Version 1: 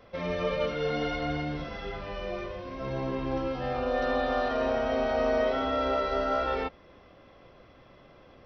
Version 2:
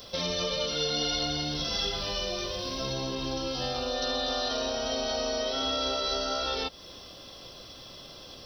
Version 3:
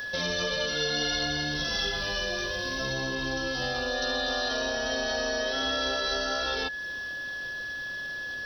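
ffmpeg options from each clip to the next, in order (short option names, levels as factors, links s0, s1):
-af "acompressor=threshold=0.0158:ratio=3,aexciter=amount=15.8:drive=3.3:freq=3300,volume=1.58"
-af "aeval=exprs='val(0)+0.0224*sin(2*PI*1700*n/s)':c=same"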